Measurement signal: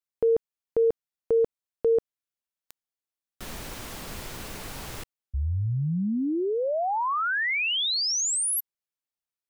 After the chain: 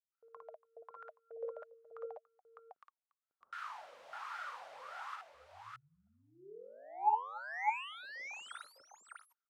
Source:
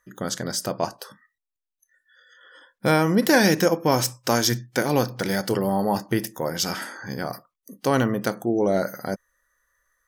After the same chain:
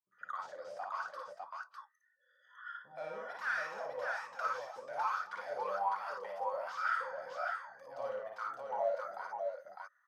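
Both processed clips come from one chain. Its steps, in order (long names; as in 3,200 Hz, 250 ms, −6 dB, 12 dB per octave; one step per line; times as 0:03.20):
guitar amp tone stack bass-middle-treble 10-0-10
mid-hump overdrive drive 31 dB, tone 4,800 Hz, clips at −8.5 dBFS
multiband delay without the direct sound lows, highs 120 ms, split 480 Hz
LFO wah 1.2 Hz 510–1,400 Hz, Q 13
on a send: multi-tap delay 56/285/604 ms −3/−20/−3 dB
on the sum: level −4.5 dB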